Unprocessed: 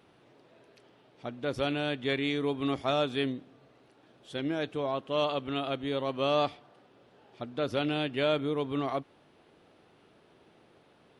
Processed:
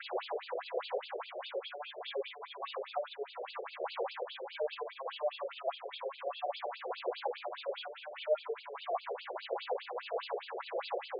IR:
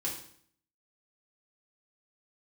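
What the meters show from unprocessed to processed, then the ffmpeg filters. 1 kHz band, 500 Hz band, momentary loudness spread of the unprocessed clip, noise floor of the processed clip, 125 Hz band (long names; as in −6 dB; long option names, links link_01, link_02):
−3.0 dB, −4.5 dB, 8 LU, −52 dBFS, below −40 dB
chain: -filter_complex "[0:a]aeval=exprs='val(0)+0.5*0.0335*sgn(val(0))':channel_layout=same,lowpass=frequency=7000:width=0.5412,lowpass=frequency=7000:width=1.3066,adynamicequalizer=threshold=0.00794:dfrequency=260:dqfactor=1.2:tfrequency=260:tqfactor=1.2:attack=5:release=100:ratio=0.375:range=3:mode=cutabove:tftype=bell,alimiter=level_in=1.5dB:limit=-24dB:level=0:latency=1:release=277,volume=-1.5dB,areverse,acompressor=mode=upward:threshold=-44dB:ratio=2.5,areverse,acrossover=split=2000[link_01][link_02];[link_01]aeval=exprs='val(0)*(1-1/2+1/2*cos(2*PI*6.5*n/s))':channel_layout=same[link_03];[link_02]aeval=exprs='val(0)*(1-1/2-1/2*cos(2*PI*6.5*n/s))':channel_layout=same[link_04];[link_03][link_04]amix=inputs=2:normalize=0,acrossover=split=93|1000[link_05][link_06][link_07];[link_05]acompressor=threshold=-60dB:ratio=4[link_08];[link_06]acompressor=threshold=-43dB:ratio=4[link_09];[link_07]acompressor=threshold=-57dB:ratio=4[link_10];[link_08][link_09][link_10]amix=inputs=3:normalize=0[link_11];[1:a]atrim=start_sample=2205,afade=type=out:start_time=0.15:duration=0.01,atrim=end_sample=7056[link_12];[link_11][link_12]afir=irnorm=-1:irlink=0,afftfilt=real='re*between(b*sr/1024,490*pow(3600/490,0.5+0.5*sin(2*PI*4.9*pts/sr))/1.41,490*pow(3600/490,0.5+0.5*sin(2*PI*4.9*pts/sr))*1.41)':imag='im*between(b*sr/1024,490*pow(3600/490,0.5+0.5*sin(2*PI*4.9*pts/sr))/1.41,490*pow(3600/490,0.5+0.5*sin(2*PI*4.9*pts/sr))*1.41)':win_size=1024:overlap=0.75,volume=12.5dB"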